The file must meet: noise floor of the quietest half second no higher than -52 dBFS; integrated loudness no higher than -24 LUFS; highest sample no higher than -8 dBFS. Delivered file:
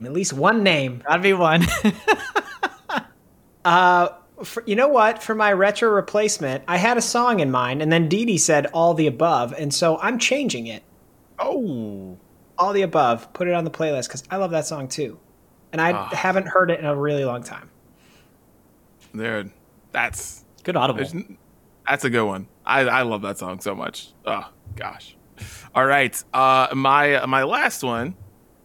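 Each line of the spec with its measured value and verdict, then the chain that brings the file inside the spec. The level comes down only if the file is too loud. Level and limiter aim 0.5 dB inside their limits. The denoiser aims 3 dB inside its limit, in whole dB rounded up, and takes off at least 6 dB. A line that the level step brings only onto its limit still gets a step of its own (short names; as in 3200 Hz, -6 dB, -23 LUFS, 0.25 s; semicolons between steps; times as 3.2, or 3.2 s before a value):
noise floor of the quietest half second -55 dBFS: OK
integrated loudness -20.5 LUFS: fail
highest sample -4.0 dBFS: fail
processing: gain -4 dB; limiter -8.5 dBFS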